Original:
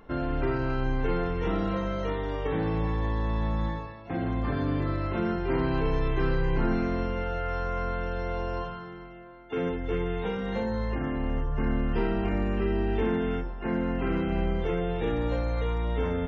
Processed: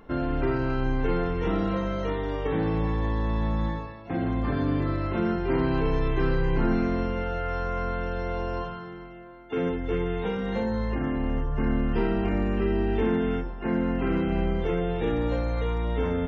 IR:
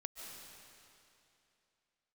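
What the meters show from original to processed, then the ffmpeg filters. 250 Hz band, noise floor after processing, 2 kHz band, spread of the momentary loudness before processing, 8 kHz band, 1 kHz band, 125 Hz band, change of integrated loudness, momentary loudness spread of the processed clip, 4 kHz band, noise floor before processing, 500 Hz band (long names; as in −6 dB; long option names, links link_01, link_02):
+3.0 dB, −40 dBFS, +1.0 dB, 5 LU, can't be measured, +1.0 dB, +1.5 dB, +2.0 dB, 5 LU, +1.0 dB, −42 dBFS, +2.0 dB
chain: -filter_complex "[0:a]asplit=2[link_01][link_02];[link_02]equalizer=frequency=260:width=0.67:gain=12[link_03];[1:a]atrim=start_sample=2205,afade=type=out:start_time=0.2:duration=0.01,atrim=end_sample=9261[link_04];[link_03][link_04]afir=irnorm=-1:irlink=0,volume=-13.5dB[link_05];[link_01][link_05]amix=inputs=2:normalize=0"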